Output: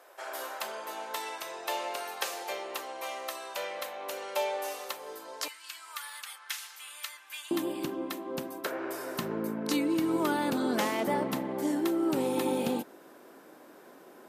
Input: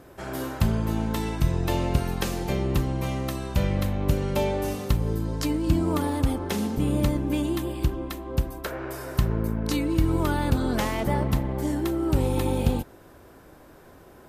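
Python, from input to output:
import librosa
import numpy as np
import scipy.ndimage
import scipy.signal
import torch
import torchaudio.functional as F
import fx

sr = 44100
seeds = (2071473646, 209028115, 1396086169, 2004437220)

y = fx.highpass(x, sr, hz=fx.steps((0.0, 550.0), (5.48, 1400.0), (7.51, 220.0)), slope=24)
y = F.gain(torch.from_numpy(y), -1.5).numpy()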